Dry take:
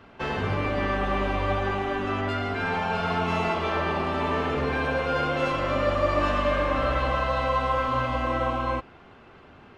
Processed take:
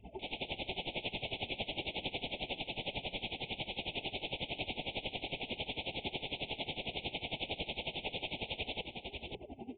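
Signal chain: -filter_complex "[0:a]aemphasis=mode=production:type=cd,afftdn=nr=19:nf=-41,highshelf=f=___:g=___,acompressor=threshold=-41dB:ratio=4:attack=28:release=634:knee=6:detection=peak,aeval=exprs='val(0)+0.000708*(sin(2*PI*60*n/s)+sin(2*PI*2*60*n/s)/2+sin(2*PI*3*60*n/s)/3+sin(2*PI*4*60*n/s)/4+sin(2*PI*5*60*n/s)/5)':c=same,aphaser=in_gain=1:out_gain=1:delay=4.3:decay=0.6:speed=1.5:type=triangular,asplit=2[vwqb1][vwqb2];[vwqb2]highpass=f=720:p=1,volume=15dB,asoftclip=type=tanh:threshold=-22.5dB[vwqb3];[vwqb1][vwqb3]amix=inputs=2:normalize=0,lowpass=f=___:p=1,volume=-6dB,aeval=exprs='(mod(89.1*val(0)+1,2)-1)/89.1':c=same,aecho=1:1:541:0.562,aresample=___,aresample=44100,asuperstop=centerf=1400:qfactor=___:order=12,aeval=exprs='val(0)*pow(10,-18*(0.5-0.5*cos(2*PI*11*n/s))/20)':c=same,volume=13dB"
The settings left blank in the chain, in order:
3000, -7, 2300, 8000, 1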